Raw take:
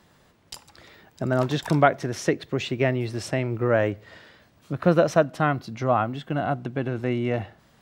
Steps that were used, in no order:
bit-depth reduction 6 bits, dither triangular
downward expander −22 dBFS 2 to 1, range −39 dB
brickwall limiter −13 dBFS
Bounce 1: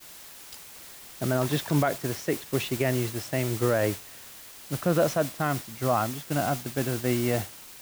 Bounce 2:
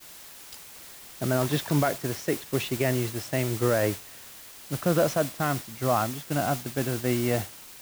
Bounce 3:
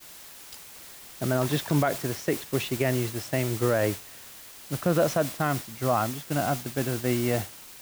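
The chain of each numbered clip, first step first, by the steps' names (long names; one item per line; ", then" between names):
bit-depth reduction, then brickwall limiter, then downward expander
brickwall limiter, then bit-depth reduction, then downward expander
bit-depth reduction, then downward expander, then brickwall limiter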